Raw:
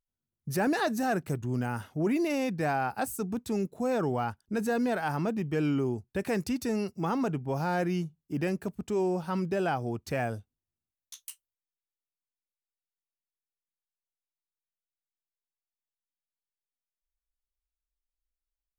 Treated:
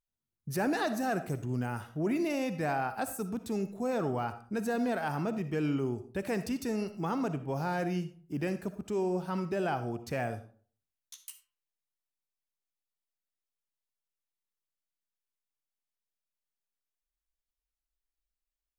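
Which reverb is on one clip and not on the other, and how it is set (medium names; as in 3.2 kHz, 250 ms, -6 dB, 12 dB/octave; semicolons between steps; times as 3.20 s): algorithmic reverb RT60 0.46 s, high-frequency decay 0.6×, pre-delay 20 ms, DRR 10.5 dB; trim -3 dB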